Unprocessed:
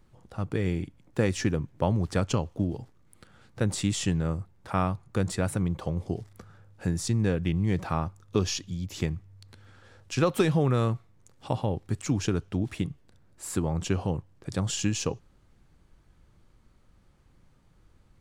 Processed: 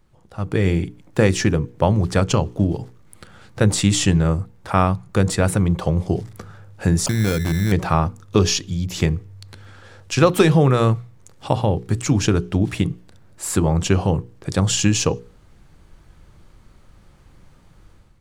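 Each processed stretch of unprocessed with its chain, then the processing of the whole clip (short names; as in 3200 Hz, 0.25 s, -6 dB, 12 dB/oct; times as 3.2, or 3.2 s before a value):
7.06–7.72 LPF 5200 Hz + compressor 3:1, threshold -26 dBFS + sample-rate reducer 1900 Hz
whole clip: AGC gain up to 10.5 dB; bell 250 Hz -3.5 dB 0.26 oct; notches 60/120/180/240/300/360/420/480 Hz; gain +1.5 dB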